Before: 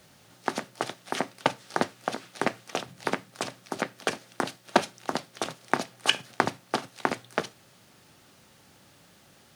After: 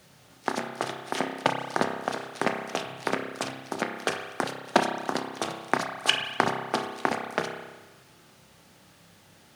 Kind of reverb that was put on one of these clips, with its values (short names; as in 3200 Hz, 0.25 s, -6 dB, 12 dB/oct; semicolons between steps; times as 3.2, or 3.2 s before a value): spring tank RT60 1.2 s, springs 30 ms, chirp 30 ms, DRR 3.5 dB